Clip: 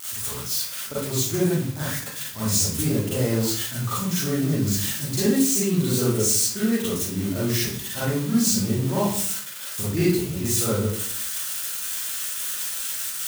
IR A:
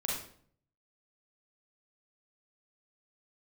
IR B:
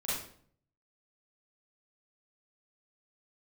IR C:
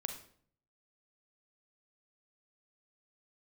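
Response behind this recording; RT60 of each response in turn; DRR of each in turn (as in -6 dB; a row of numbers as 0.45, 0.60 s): B; 0.55, 0.55, 0.55 s; -4.0, -10.0, 5.5 dB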